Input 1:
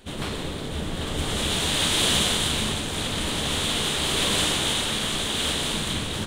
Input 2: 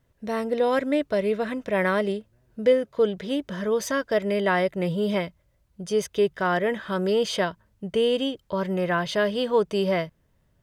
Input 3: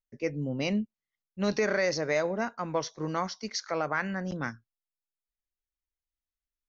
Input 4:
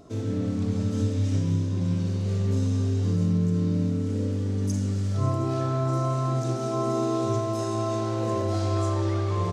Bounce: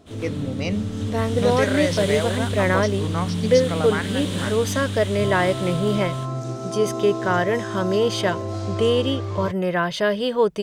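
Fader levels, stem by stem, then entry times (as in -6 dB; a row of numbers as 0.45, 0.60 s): -11.0, +2.5, +2.5, -2.0 dB; 0.00, 0.85, 0.00, 0.00 s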